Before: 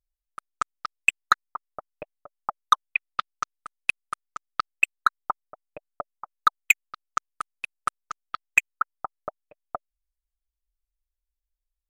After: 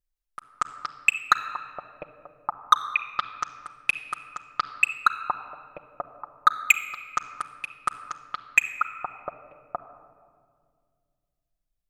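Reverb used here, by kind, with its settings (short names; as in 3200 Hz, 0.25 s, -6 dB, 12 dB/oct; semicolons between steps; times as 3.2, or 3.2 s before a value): shoebox room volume 3800 m³, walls mixed, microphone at 0.89 m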